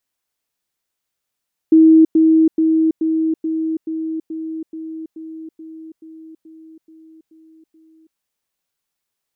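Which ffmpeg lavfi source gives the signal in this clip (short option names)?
-f lavfi -i "aevalsrc='pow(10,(-5.5-3*floor(t/0.43))/20)*sin(2*PI*320*t)*clip(min(mod(t,0.43),0.33-mod(t,0.43))/0.005,0,1)':d=6.45:s=44100"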